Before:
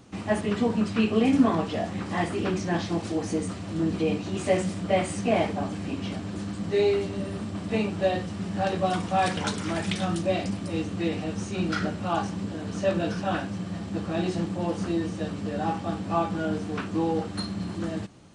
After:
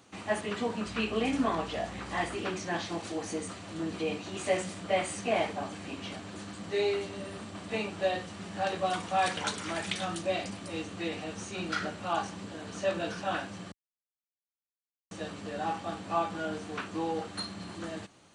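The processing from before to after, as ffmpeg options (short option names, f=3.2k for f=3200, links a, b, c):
-filter_complex "[0:a]asettb=1/sr,asplit=3[a][b][c];[a]atrim=end=0.854[d];[b]atrim=start=0.85:end=2.37,asetpts=PTS-STARTPTS,afade=t=in:d=0.004:c=qsin,afade=t=out:st=1.516:d=0.004:c=qsin,aeval=exprs='val(0)+0.02*(sin(2*PI*60*n/s)+sin(2*PI*2*60*n/s)/2+sin(2*PI*3*60*n/s)/3+sin(2*PI*4*60*n/s)/4+sin(2*PI*5*60*n/s)/5)':c=same[e];[c]atrim=start=2.366[f];[d][e]acrossfade=d=0.004:c1=hsin:c2=qsin[g];[g][f]acrossfade=d=0.004:c1=qsin:c2=hsin,asplit=3[h][i][j];[h]atrim=end=13.72,asetpts=PTS-STARTPTS,afade=t=out:st=13.716:d=0.004:c=hsin[k];[i]atrim=start=13.72:end=15.11,asetpts=PTS-STARTPTS,volume=0[l];[j]atrim=start=15.11,asetpts=PTS-STARTPTS,afade=t=in:d=0.004:c=hsin[m];[k][l][m]concat=n=3:v=0:a=1,highpass=82,equalizer=f=150:w=0.41:g=-11,bandreject=f=5.2k:w=16,volume=-1dB"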